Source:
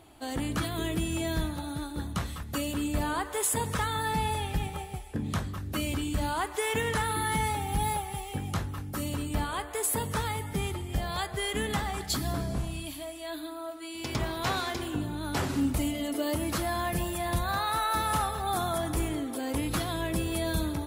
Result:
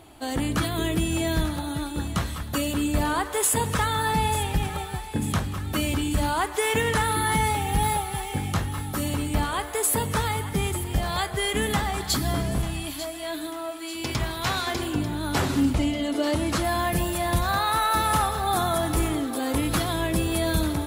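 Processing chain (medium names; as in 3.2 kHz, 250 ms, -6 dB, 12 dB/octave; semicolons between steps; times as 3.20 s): 14.12–14.67 s: peaking EQ 430 Hz -6 dB 2.4 oct; 15.73–16.63 s: low-pass 5.2 kHz -> 9.6 kHz 12 dB/octave; on a send: thinning echo 893 ms, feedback 62%, high-pass 1.1 kHz, level -12.5 dB; on the sum: trim +5.5 dB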